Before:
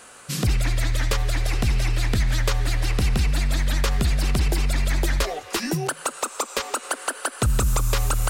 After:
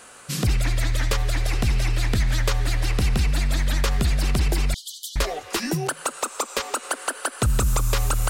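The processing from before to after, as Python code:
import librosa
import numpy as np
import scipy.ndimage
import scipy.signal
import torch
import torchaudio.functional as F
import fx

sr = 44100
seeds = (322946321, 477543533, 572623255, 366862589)

y = fx.brickwall_highpass(x, sr, low_hz=2900.0, at=(4.74, 5.16))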